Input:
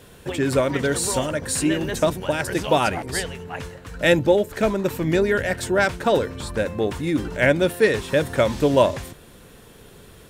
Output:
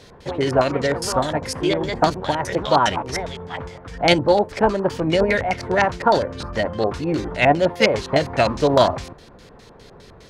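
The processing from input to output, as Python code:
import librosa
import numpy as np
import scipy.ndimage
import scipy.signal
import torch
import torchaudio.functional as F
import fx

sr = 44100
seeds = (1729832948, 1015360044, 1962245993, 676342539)

y = fx.filter_lfo_lowpass(x, sr, shape='square', hz=4.9, low_hz=930.0, high_hz=4800.0, q=1.8)
y = fx.formant_shift(y, sr, semitones=3)
y = y * librosa.db_to_amplitude(1.0)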